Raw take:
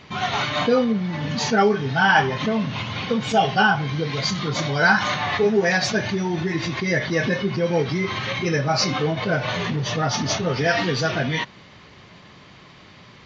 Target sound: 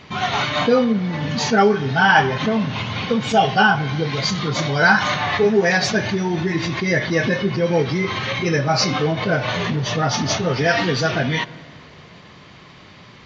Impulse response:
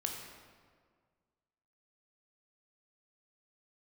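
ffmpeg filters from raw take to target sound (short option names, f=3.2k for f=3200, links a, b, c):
-filter_complex "[0:a]asplit=2[a][b];[1:a]atrim=start_sample=2205,asetrate=31752,aresample=44100,highshelf=f=6.7k:g=-11.5[c];[b][c]afir=irnorm=-1:irlink=0,volume=-17dB[d];[a][d]amix=inputs=2:normalize=0,volume=1.5dB"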